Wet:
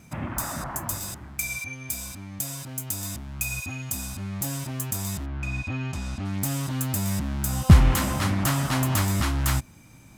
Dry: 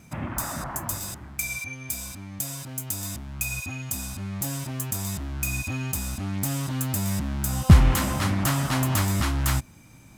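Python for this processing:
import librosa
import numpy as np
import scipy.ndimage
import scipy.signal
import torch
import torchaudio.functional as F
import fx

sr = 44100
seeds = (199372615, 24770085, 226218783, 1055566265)

y = fx.lowpass(x, sr, hz=fx.line((5.25, 2400.0), (6.24, 5000.0)), slope=12, at=(5.25, 6.24), fade=0.02)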